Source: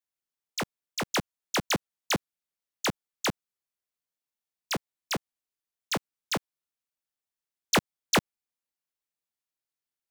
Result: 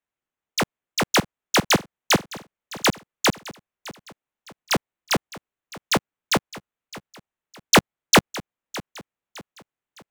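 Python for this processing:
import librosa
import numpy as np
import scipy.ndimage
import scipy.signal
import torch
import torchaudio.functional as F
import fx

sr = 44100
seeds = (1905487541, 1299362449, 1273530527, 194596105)

y = fx.wiener(x, sr, points=9)
y = fx.echo_feedback(y, sr, ms=611, feedback_pct=39, wet_db=-18)
y = y * librosa.db_to_amplitude(9.0)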